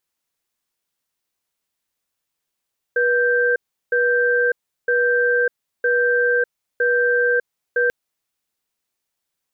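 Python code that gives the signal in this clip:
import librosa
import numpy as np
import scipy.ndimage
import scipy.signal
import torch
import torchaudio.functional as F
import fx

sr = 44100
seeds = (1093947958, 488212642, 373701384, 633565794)

y = fx.cadence(sr, length_s=4.94, low_hz=485.0, high_hz=1570.0, on_s=0.6, off_s=0.36, level_db=-17.5)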